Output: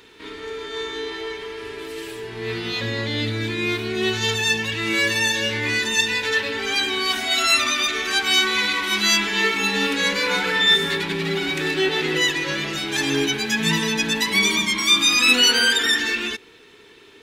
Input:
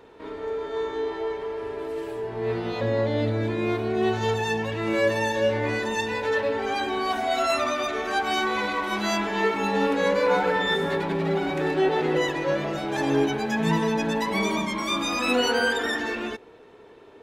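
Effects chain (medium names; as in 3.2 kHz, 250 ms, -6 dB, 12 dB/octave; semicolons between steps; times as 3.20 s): FFT filter 400 Hz 0 dB, 590 Hz -11 dB, 2.1 kHz +10 dB, 3.5 kHz +14 dB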